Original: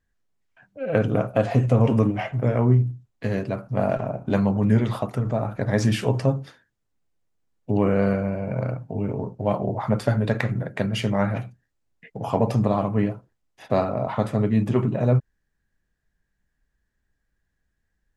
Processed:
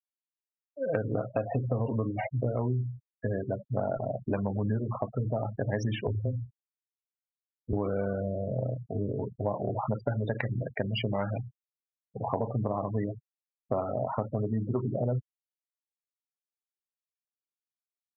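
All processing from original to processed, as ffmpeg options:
ffmpeg -i in.wav -filter_complex "[0:a]asettb=1/sr,asplit=3[link_01][link_02][link_03];[link_01]atrim=end=6.074[link_04];[link_02]atrim=start=6.07:end=7.73,asetpts=PTS-STARTPTS,afade=type=in:duration=0.004:curve=qsin,afade=type=out:start_time=1.656:duration=0.004:curve=qsin,lowshelf=frequency=260:gain=10.5,acompressor=threshold=-31dB:ratio=2:attack=3.2:release=140:knee=1:detection=peak,afreqshift=-17[link_05];[link_03]atrim=start=7.726[link_06];[link_04][link_05]acrossfade=duration=0.004:curve1=hsin:curve2=qsin[link_07];[link_07][link_06]acrossfade=duration=0.004:curve1=qsin:curve2=hsin,afftfilt=real='re*gte(hypot(re,im),0.0631)':imag='im*gte(hypot(re,im),0.0631)':win_size=1024:overlap=0.75,equalizer=frequency=180:width_type=o:width=0.82:gain=-6,acompressor=threshold=-24dB:ratio=6,volume=-1.5dB" out.wav

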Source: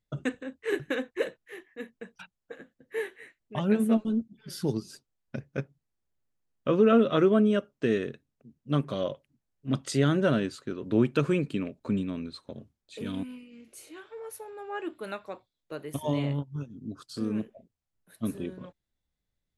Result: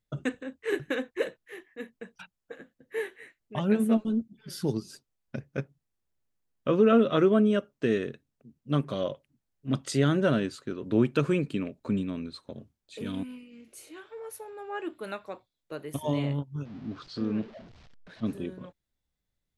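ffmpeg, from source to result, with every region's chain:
ffmpeg -i in.wav -filter_complex "[0:a]asettb=1/sr,asplit=3[link_01][link_02][link_03];[link_01]atrim=end=16.654[link_04];[link_02]atrim=start=16.65:end=18.33,asetpts=PTS-STARTPTS,afade=type=in:duration=0.004:curve=qsin,afade=type=out:start_time=1.676:duration=0.004:curve=qsin,aeval=exprs='val(0)+0.5*0.00562*sgn(val(0))':channel_layout=same,lowpass=frequency=4800:width=0.5412,lowpass=frequency=4800:width=1.3066[link_05];[link_03]atrim=start=18.326[link_06];[link_04][link_05]acrossfade=duration=0.004:curve1=hsin:curve2=qsin[link_07];[link_07][link_06]acrossfade=duration=0.004:curve1=qsin:curve2=hsin" out.wav

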